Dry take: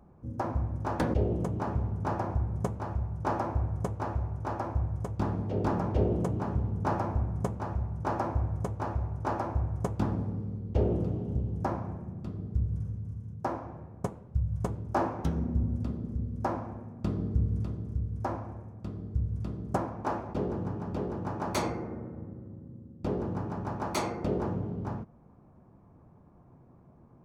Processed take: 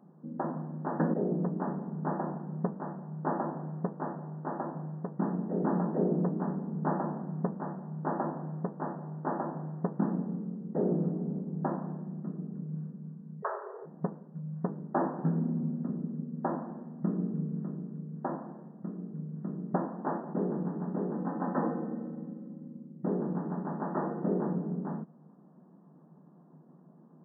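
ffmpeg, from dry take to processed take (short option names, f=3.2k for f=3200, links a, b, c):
-filter_complex "[0:a]asettb=1/sr,asplit=3[a][b][c];[a]atrim=end=13.424[d];[b]atrim=start=13.42:end=13.86,asetpts=PTS-STARTPTS,afade=t=in:d=0.004:c=qsin,afade=t=out:st=0.436:d=0.004:c=qsin,afreqshift=310[e];[c]atrim=start=13.856[f];[d][e]acrossfade=d=0.004:c1=hsin:c2=qsin[g];[g][f]acrossfade=d=0.004:c1=qsin:c2=hsin,asettb=1/sr,asplit=3[h][i][j];[h]atrim=end=21.144[k];[i]atrim=start=21.14:end=22.86,asetpts=PTS-STARTPTS,afade=t=in:d=0.004:c=qsin,afade=t=out:st=1.716:d=0.004:c=qsin,aecho=1:1:3.9:0.54,atrim=end_sample=75852[l];[j]atrim=start=22.856[m];[k][l]acrossfade=d=0.004:c1=hsin:c2=qsin[n];[n][m]acrossfade=d=0.004:c1=qsin:c2=hsin,aemphasis=mode=reproduction:type=bsi,afftfilt=real='re*between(b*sr/4096,150,1900)':imag='im*between(b*sr/4096,150,1900)':win_size=4096:overlap=0.75,volume=-2.5dB"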